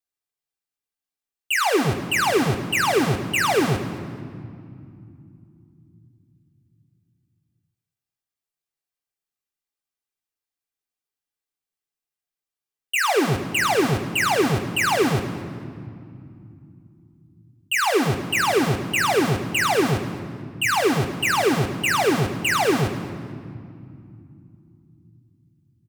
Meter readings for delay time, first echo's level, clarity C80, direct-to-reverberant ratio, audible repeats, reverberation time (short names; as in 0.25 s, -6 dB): 0.222 s, -15.5 dB, 10.5 dB, 2.5 dB, 2, 2.4 s